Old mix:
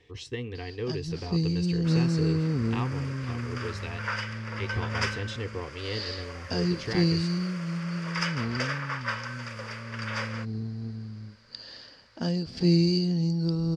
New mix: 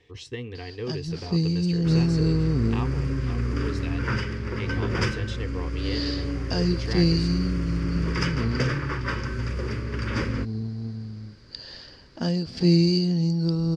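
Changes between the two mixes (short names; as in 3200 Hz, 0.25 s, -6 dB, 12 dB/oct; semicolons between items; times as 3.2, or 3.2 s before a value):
first sound +3.0 dB; second sound: remove steep high-pass 530 Hz 48 dB/oct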